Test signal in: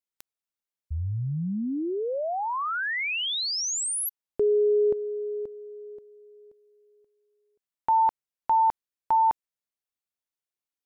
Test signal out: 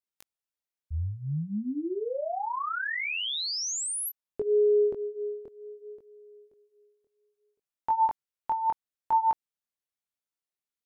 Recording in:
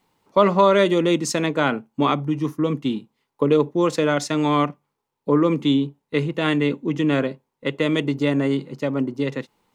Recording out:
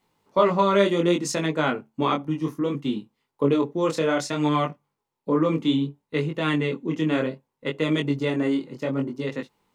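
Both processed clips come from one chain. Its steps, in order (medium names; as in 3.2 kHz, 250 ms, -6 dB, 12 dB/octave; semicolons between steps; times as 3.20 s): chorus 0.64 Hz, delay 19 ms, depth 6.1 ms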